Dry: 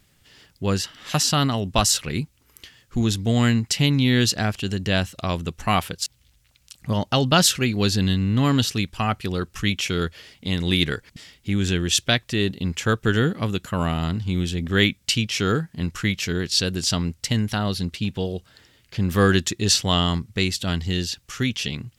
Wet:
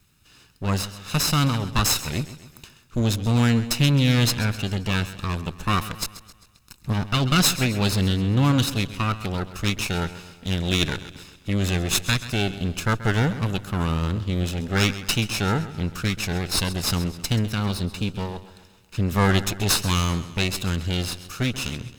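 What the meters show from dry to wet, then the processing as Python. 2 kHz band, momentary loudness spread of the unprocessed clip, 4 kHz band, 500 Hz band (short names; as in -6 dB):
-1.0 dB, 9 LU, -2.5 dB, -3.5 dB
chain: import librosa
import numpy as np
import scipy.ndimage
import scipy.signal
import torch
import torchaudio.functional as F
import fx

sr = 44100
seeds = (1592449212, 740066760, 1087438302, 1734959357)

y = fx.lower_of_two(x, sr, delay_ms=0.78)
y = fx.echo_warbled(y, sr, ms=132, feedback_pct=50, rate_hz=2.8, cents=57, wet_db=-14.5)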